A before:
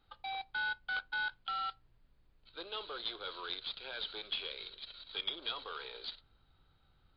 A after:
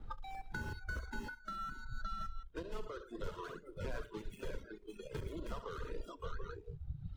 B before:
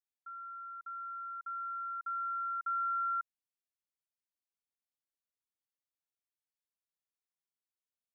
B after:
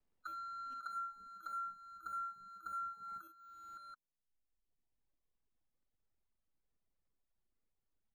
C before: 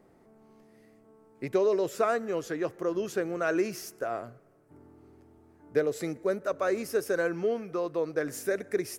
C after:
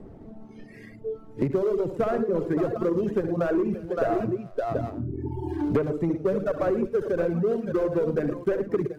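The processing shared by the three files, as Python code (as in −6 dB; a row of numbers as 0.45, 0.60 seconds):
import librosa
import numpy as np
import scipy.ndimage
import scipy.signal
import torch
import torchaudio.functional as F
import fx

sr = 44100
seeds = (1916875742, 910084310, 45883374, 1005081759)

y = fx.dead_time(x, sr, dead_ms=0.14)
y = fx.tilt_eq(y, sr, slope=-4.5)
y = fx.echo_multitap(y, sr, ms=(65, 111, 327, 565, 732), db=(-6.0, -7.5, -17.5, -9.5, -12.5))
y = fx.dynamic_eq(y, sr, hz=3800.0, q=0.98, threshold_db=-48.0, ratio=4.0, max_db=-4)
y = fx.dereverb_blind(y, sr, rt60_s=1.4)
y = fx.rider(y, sr, range_db=5, speed_s=0.5)
y = fx.noise_reduce_blind(y, sr, reduce_db=18)
y = 10.0 ** (-15.5 / 20.0) * np.tanh(y / 10.0 ** (-15.5 / 20.0))
y = fx.band_squash(y, sr, depth_pct=100)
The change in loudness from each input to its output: −6.5, −8.0, +3.5 LU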